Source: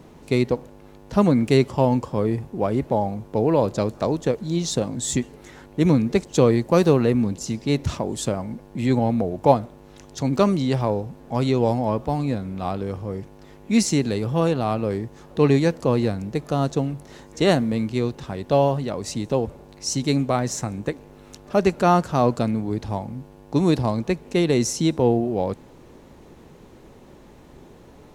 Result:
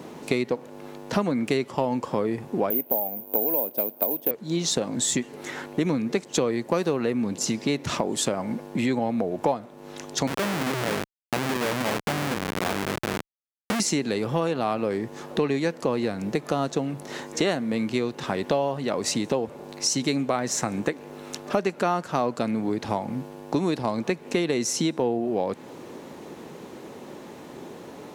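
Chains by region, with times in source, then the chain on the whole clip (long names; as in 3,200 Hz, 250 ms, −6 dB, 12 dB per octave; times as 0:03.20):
0:02.70–0:04.31: mu-law and A-law mismatch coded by A + loudspeaker in its box 240–4,800 Hz, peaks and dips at 250 Hz +4 dB, 640 Hz +5 dB, 1,200 Hz −10 dB, 1,800 Hz −9 dB, 4,100 Hz −8 dB + bad sample-rate conversion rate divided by 3×, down filtered, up zero stuff
0:10.27–0:13.80: amplitude modulation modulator 250 Hz, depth 60% + comparator with hysteresis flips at −29.5 dBFS
whole clip: high-pass filter 200 Hz 12 dB per octave; downward compressor 5 to 1, threshold −31 dBFS; dynamic equaliser 1,900 Hz, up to +4 dB, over −51 dBFS, Q 0.79; level +8 dB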